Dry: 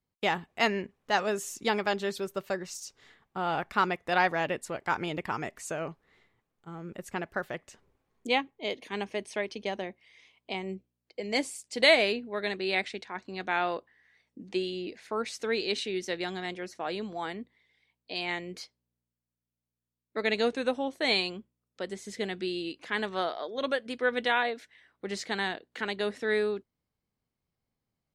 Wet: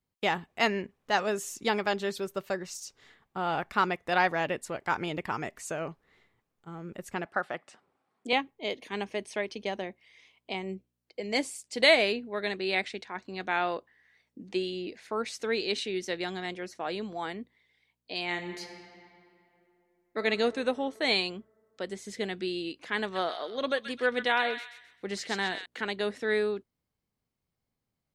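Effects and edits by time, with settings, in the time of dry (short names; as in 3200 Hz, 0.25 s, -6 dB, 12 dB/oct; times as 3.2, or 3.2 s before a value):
7.25–8.33 speaker cabinet 200–9500 Hz, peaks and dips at 430 Hz -4 dB, 770 Hz +7 dB, 1300 Hz +7 dB, 6500 Hz -8 dB
18.25–20.23 reverb throw, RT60 2.8 s, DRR 6 dB
23.01–25.66 thin delay 0.13 s, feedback 33%, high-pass 1800 Hz, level -5 dB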